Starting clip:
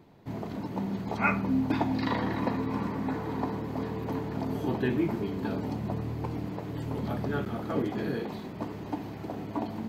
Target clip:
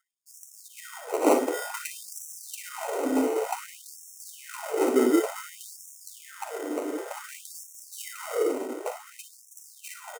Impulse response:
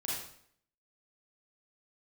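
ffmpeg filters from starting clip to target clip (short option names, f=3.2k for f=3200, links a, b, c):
-filter_complex "[0:a]anlmdn=0.251,areverse,acompressor=mode=upward:threshold=-41dB:ratio=2.5,areverse,equalizer=f=3.9k:t=o:w=0.44:g=-9,acrusher=samples=26:mix=1:aa=0.000001,asplit=2[a][b];[b]aecho=0:1:41|57:0.237|0.316[c];[a][c]amix=inputs=2:normalize=0,atempo=0.97,acontrast=87,equalizer=f=125:t=o:w=1:g=-7,equalizer=f=250:t=o:w=1:g=4,equalizer=f=500:t=o:w=1:g=11,equalizer=f=4k:t=o:w=1:g=-10,equalizer=f=8k:t=o:w=1:g=6,afftfilt=real='re*gte(b*sr/1024,230*pow(5500/230,0.5+0.5*sin(2*PI*0.55*pts/sr)))':imag='im*gte(b*sr/1024,230*pow(5500/230,0.5+0.5*sin(2*PI*0.55*pts/sr)))':win_size=1024:overlap=0.75,volume=-5.5dB"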